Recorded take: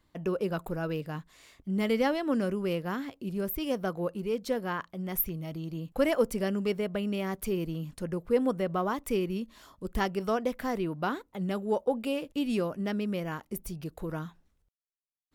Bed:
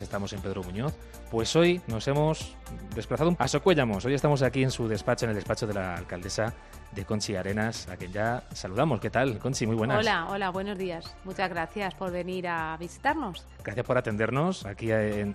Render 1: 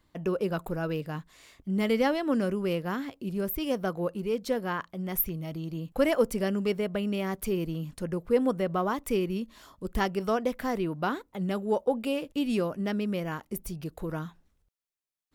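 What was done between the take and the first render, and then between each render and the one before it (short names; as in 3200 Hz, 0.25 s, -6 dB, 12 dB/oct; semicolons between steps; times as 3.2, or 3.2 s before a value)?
gain +1.5 dB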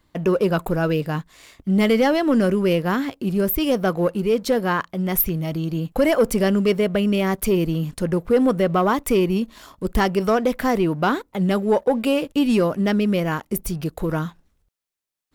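in parallel at +1.5 dB: limiter -19.5 dBFS, peak gain reduction 8 dB; on the sum: sample leveller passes 1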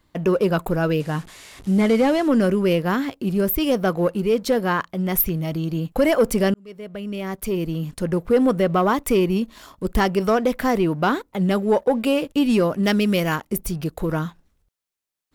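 1–2.28 delta modulation 64 kbps, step -37.5 dBFS; 6.54–8.26 fade in; 12.83–13.36 high shelf 2300 Hz +9 dB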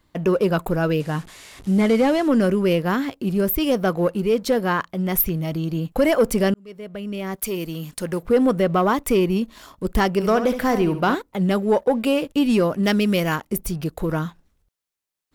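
7.36–8.23 tilt +2 dB/oct; 10.13–11.15 flutter echo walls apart 11.9 m, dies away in 0.42 s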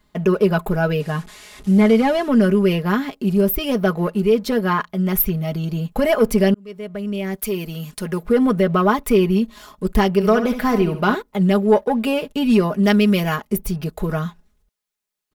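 dynamic EQ 7600 Hz, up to -5 dB, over -47 dBFS, Q 1.3; comb 4.8 ms, depth 71%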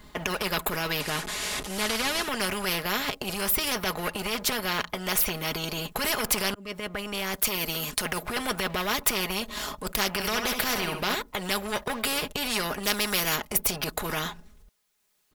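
transient shaper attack -8 dB, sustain -3 dB; spectral compressor 4:1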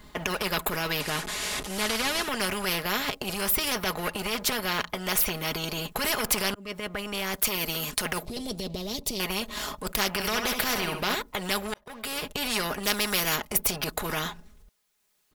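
8.25–9.2 EQ curve 270 Hz 0 dB, 590 Hz -5 dB, 1500 Hz -27 dB, 4200 Hz 0 dB, 16000 Hz -11 dB; 11.74–12.43 fade in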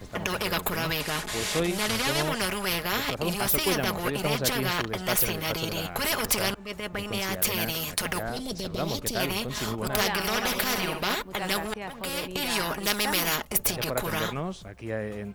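add bed -6 dB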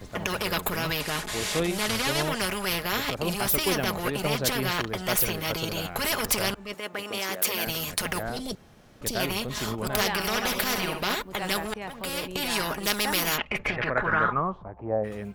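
6.74–7.67 HPF 280 Hz; 8.55–9.01 room tone; 13.37–15.03 synth low-pass 2800 Hz -> 700 Hz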